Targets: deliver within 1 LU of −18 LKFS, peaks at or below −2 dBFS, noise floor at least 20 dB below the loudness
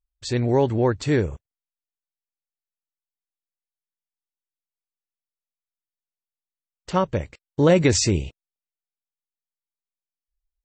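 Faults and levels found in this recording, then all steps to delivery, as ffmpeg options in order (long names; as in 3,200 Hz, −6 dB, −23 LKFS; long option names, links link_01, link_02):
integrated loudness −21.5 LKFS; sample peak −6.0 dBFS; target loudness −18.0 LKFS
→ -af "volume=3.5dB"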